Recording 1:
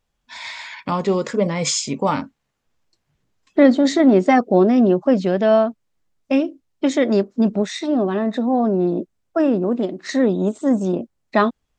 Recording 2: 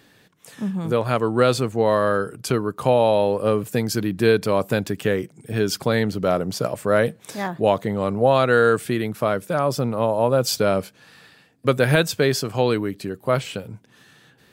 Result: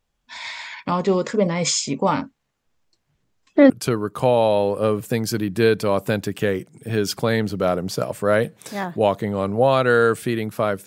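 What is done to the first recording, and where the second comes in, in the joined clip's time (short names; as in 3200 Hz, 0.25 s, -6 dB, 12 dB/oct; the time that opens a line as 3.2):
recording 1
3.7 switch to recording 2 from 2.33 s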